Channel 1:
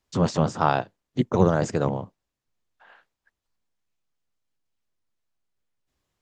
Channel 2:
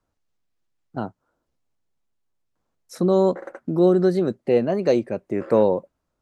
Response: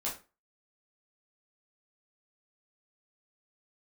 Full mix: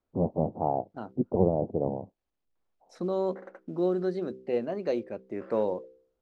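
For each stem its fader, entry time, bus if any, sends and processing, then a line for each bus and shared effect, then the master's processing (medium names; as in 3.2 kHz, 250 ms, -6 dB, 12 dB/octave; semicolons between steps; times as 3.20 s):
-3.0 dB, 0.00 s, no send, steep low-pass 820 Hz 48 dB/octave
-9.5 dB, 0.00 s, no send, de-hum 64.27 Hz, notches 8; companded quantiser 8-bit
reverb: none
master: low-pass 4.6 kHz 12 dB/octave; peaking EQ 130 Hz -7 dB 0.88 oct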